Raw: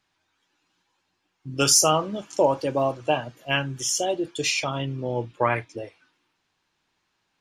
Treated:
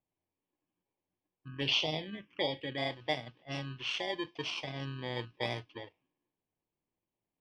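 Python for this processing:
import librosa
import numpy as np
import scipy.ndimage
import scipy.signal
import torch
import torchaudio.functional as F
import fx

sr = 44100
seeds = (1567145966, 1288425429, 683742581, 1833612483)

y = fx.bit_reversed(x, sr, seeds[0], block=32)
y = fx.ladder_lowpass(y, sr, hz=3700.0, resonance_pct=55)
y = fx.env_phaser(y, sr, low_hz=580.0, high_hz=1700.0, full_db=-26.0, at=(1.48, 2.78))
y = fx.env_lowpass(y, sr, base_hz=1400.0, full_db=-31.5)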